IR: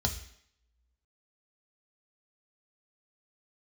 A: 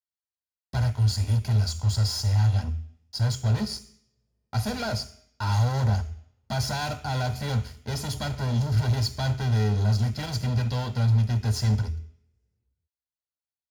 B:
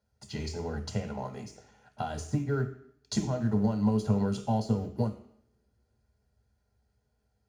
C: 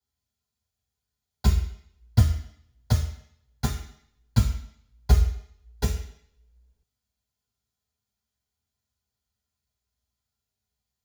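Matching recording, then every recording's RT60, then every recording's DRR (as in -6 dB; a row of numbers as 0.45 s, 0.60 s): B; 0.70 s, 0.70 s, 0.70 s; 9.0 dB, 4.0 dB, -5.0 dB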